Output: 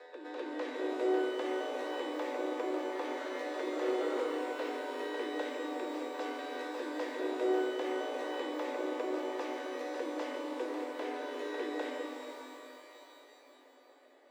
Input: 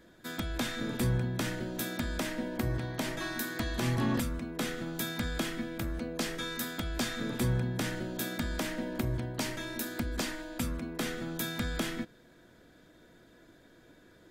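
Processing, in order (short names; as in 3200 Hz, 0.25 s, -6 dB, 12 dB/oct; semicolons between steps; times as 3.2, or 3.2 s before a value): on a send: reverse echo 0.252 s -6.5 dB; on the sum: frequency shift +250 Hz; tape spacing loss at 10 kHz 29 dB; shimmer reverb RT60 3.2 s, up +12 st, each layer -8 dB, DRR 1.5 dB; gain -4.5 dB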